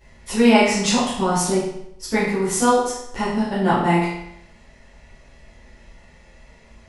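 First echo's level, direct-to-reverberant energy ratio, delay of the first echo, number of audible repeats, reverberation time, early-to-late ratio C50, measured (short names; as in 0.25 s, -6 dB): none, -12.0 dB, none, none, 0.75 s, 1.5 dB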